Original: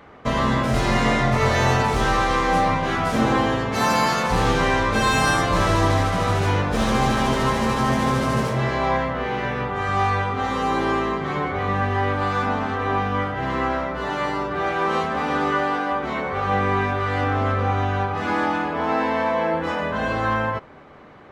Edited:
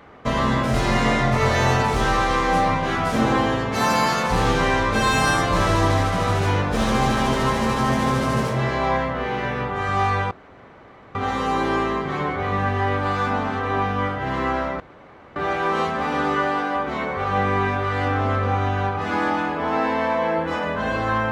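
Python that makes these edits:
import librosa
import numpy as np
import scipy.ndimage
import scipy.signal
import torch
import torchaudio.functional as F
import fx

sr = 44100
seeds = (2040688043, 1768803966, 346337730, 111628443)

y = fx.edit(x, sr, fx.insert_room_tone(at_s=10.31, length_s=0.84),
    fx.room_tone_fill(start_s=13.96, length_s=0.56), tone=tone)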